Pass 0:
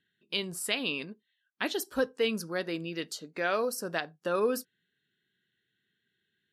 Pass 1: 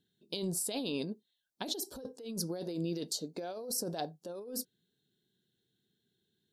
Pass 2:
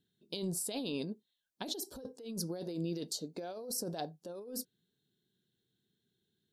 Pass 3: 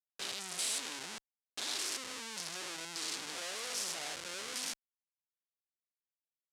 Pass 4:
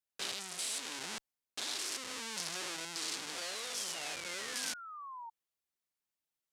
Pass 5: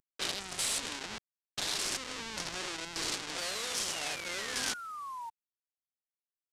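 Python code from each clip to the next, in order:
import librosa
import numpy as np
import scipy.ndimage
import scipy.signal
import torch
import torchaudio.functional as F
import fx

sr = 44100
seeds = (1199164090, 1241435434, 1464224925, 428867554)

y1 = fx.band_shelf(x, sr, hz=1800.0, db=-15.5, octaves=1.7)
y1 = fx.notch(y1, sr, hz=1900.0, q=9.3)
y1 = fx.over_compress(y1, sr, threshold_db=-38.0, ratio=-1.0)
y2 = fx.low_shelf(y1, sr, hz=210.0, db=3.0)
y2 = F.gain(torch.from_numpy(y2), -2.5).numpy()
y3 = fx.spec_steps(y2, sr, hold_ms=200)
y3 = fx.schmitt(y3, sr, flips_db=-50.5)
y3 = fx.weighting(y3, sr, curve='ITU-R 468')
y3 = F.gain(torch.from_numpy(y3), 3.0).numpy()
y4 = fx.spec_paint(y3, sr, seeds[0], shape='fall', start_s=3.38, length_s=1.92, low_hz=900.0, high_hz=4700.0, level_db=-50.0)
y4 = fx.rider(y4, sr, range_db=4, speed_s=0.5)
y5 = fx.cvsd(y4, sr, bps=64000)
y5 = F.gain(torch.from_numpy(y5), 5.0).numpy()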